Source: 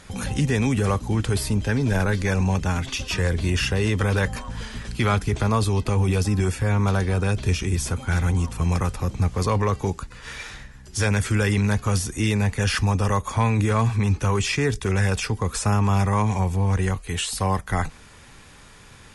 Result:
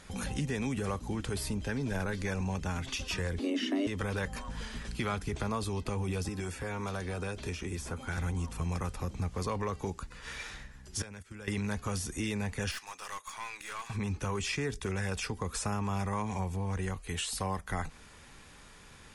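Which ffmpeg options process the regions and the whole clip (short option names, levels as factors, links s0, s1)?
-filter_complex "[0:a]asettb=1/sr,asplit=3[s0][s1][s2];[s0]atrim=end=3.394[s3];[s1]atrim=start=3.39:end=3.87,asetpts=PTS-STARTPTS,afade=t=in:d=0.004:c=qsin,afade=t=out:st=0.476:d=0.004:c=qsin,acrossover=split=5400[s4][s5];[s5]acompressor=threshold=0.00398:ratio=4:attack=1:release=60[s6];[s4][s6]amix=inputs=2:normalize=0,asubboost=boost=10:cutoff=230,afreqshift=190[s7];[s2]atrim=start=3.866[s8];[s3][s7]acrossfade=d=0.004:c1=hsin:c2=qsin[s9];[s9][s8]acrossfade=d=0.004:c1=qsin:c2=hsin,asettb=1/sr,asplit=3[s10][s11][s12];[s10]atrim=end=6.284[s13];[s11]atrim=start=6.28:end=8.18,asetpts=PTS-STARTPTS,afade=t=in:d=0.004:c=qsin,afade=t=out:st=1.896:d=0.004:c=qsin,acrossover=split=230|2000[s14][s15][s16];[s14]acompressor=threshold=0.0316:ratio=4[s17];[s15]acompressor=threshold=0.0355:ratio=4[s18];[s16]acompressor=threshold=0.0126:ratio=4[s19];[s17][s18][s19]amix=inputs=3:normalize=0,asplit=2[s20][s21];[s21]adelay=12,volume=0.211[s22];[s20][s22]amix=inputs=2:normalize=0,atrim=end_sample=83790[s23];[s12]atrim=start=8.176[s24];[s13][s23]acrossfade=d=0.004:c1=hsin:c2=qsin[s25];[s25][s24]acrossfade=d=0.004:c1=qsin:c2=hsin,asettb=1/sr,asplit=3[s26][s27][s28];[s26]atrim=end=11.024[s29];[s27]atrim=start=11.02:end=11.48,asetpts=PTS-STARTPTS,afade=t=in:d=0.004:c=qsin,afade=t=out:st=0.456:d=0.004:c=qsin,agate=range=0.0891:threshold=0.0794:ratio=16:release=100:detection=peak,acompressor=threshold=0.0224:ratio=12:attack=3.2:release=140:knee=1:detection=peak[s30];[s28]atrim=start=11.476[s31];[s29][s30]acrossfade=d=0.004:c1=hsin:c2=qsin[s32];[s32][s31]acrossfade=d=0.004:c1=qsin:c2=hsin,asettb=1/sr,asplit=3[s33][s34][s35];[s33]atrim=end=12.714[s36];[s34]atrim=start=12.71:end=13.9,asetpts=PTS-STARTPTS,afade=t=in:d=0.004:c=qsin,afade=t=out:st=1.186:d=0.004:c=qsin,highpass=1300,aeval=exprs='(tanh(25.1*val(0)+0.5)-tanh(0.5))/25.1':c=same[s37];[s35]atrim=start=13.896[s38];[s36][s37]acrossfade=d=0.004:c1=hsin:c2=qsin[s39];[s39][s38]acrossfade=d=0.004:c1=qsin:c2=hsin,equalizer=f=110:t=o:w=0.34:g=-7.5,acompressor=threshold=0.0447:ratio=2,volume=0.501"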